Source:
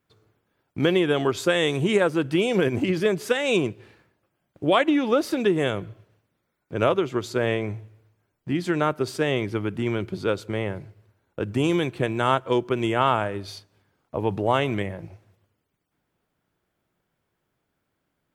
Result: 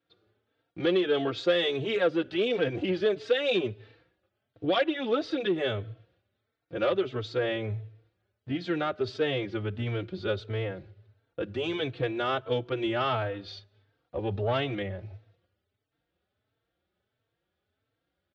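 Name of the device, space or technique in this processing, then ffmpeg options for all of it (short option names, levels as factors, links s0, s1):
barber-pole flanger into a guitar amplifier: -filter_complex "[0:a]asubboost=boost=3:cutoff=120,asplit=2[s0][s1];[s1]adelay=3.9,afreqshift=1.5[s2];[s0][s2]amix=inputs=2:normalize=1,asoftclip=type=tanh:threshold=0.141,highpass=100,equalizer=f=150:t=q:w=4:g=-10,equalizer=f=220:t=q:w=4:g=-4,equalizer=f=500:t=q:w=4:g=3,equalizer=f=990:t=q:w=4:g=-9,equalizer=f=2200:t=q:w=4:g=-3,equalizer=f=3700:t=q:w=4:g=5,lowpass=f=4500:w=0.5412,lowpass=f=4500:w=1.3066"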